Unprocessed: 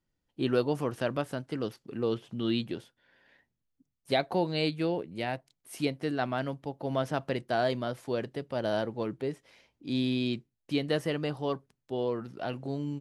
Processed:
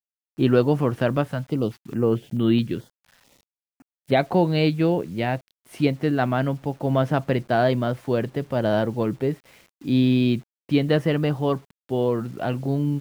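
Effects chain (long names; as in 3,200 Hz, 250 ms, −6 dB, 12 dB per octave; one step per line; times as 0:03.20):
bass and treble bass +6 dB, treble −11 dB
bit reduction 10 bits
0:01.28–0:04.17: notch on a step sequencer 4.6 Hz 340–5,500 Hz
level +7.5 dB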